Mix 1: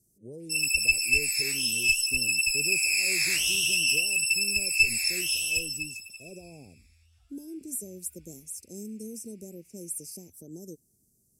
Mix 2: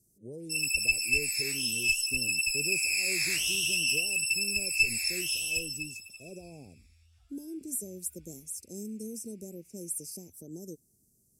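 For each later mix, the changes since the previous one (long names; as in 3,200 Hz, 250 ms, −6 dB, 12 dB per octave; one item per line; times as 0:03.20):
first sound −3.5 dB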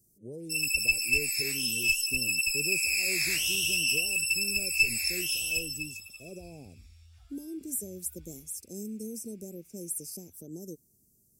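second sound +6.5 dB
master: remove Chebyshev low-pass filter 11,000 Hz, order 2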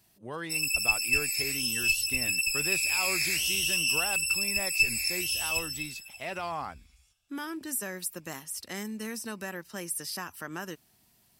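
speech: remove elliptic band-stop filter 460–6,500 Hz, stop band 50 dB
second sound: entry −1.45 s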